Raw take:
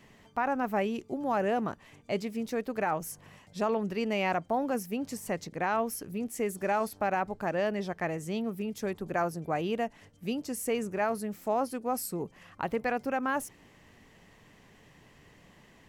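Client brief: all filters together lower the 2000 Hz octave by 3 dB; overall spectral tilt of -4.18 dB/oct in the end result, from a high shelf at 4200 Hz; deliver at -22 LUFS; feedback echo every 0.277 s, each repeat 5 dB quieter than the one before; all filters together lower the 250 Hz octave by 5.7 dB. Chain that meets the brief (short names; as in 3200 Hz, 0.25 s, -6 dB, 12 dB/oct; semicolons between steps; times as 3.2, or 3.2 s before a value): bell 250 Hz -7 dB; bell 2000 Hz -4.5 dB; high shelf 4200 Hz +3.5 dB; feedback echo 0.277 s, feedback 56%, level -5 dB; gain +10.5 dB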